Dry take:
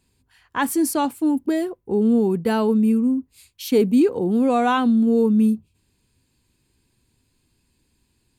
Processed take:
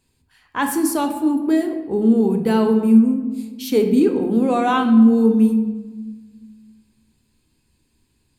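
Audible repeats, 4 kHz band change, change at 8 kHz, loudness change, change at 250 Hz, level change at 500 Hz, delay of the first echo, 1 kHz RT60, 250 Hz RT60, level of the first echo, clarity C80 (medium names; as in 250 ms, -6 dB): no echo, +1.0 dB, no reading, +2.5 dB, +3.5 dB, +1.5 dB, no echo, 1.3 s, 2.1 s, no echo, 10.0 dB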